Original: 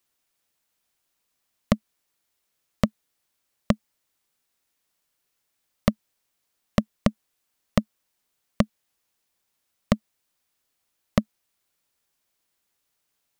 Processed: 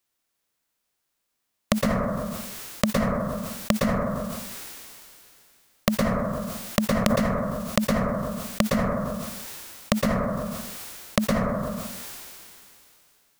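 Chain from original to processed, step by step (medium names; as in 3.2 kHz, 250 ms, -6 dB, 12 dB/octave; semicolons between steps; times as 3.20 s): formants flattened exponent 0.6; plate-style reverb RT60 0.66 s, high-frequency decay 0.35×, pre-delay 105 ms, DRR 4 dB; decay stretcher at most 22 dB/s; trim -2 dB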